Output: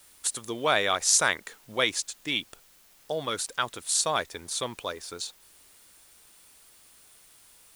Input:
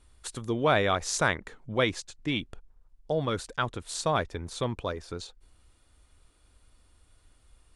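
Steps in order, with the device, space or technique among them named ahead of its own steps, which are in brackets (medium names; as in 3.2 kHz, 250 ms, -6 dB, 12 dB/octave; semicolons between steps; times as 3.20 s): turntable without a phono preamp (RIAA curve recording; white noise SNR 27 dB)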